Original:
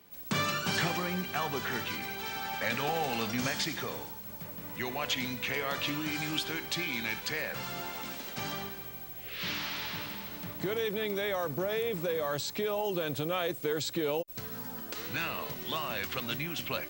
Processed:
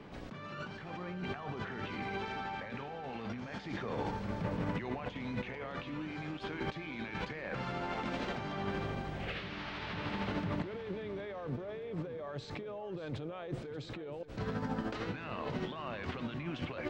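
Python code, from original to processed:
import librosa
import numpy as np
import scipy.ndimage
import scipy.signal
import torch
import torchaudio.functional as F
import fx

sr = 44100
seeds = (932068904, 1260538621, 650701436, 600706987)

y = fx.over_compress(x, sr, threshold_db=-43.0, ratio=-1.0)
y = fx.spacing_loss(y, sr, db_at_10k=33)
y = fx.echo_feedback(y, sr, ms=584, feedback_pct=45, wet_db=-14)
y = y * librosa.db_to_amplitude(7.0)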